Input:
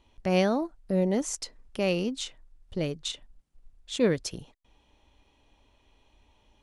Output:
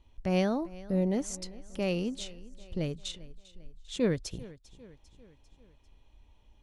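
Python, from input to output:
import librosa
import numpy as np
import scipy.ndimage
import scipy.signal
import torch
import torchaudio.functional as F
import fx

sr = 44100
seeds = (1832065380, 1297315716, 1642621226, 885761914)

y = fx.low_shelf(x, sr, hz=130.0, db=12.0)
y = fx.echo_feedback(y, sr, ms=397, feedback_pct=53, wet_db=-19.5)
y = F.gain(torch.from_numpy(y), -5.5).numpy()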